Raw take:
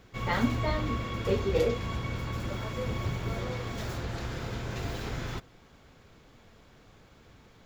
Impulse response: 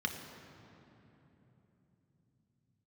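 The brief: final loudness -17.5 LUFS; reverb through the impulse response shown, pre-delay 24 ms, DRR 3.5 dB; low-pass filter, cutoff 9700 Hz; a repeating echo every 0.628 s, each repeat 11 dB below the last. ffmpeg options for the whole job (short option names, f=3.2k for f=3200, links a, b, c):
-filter_complex "[0:a]lowpass=9.7k,aecho=1:1:628|1256|1884:0.282|0.0789|0.0221,asplit=2[a][b];[1:a]atrim=start_sample=2205,adelay=24[c];[b][c]afir=irnorm=-1:irlink=0,volume=-8dB[d];[a][d]amix=inputs=2:normalize=0,volume=12.5dB"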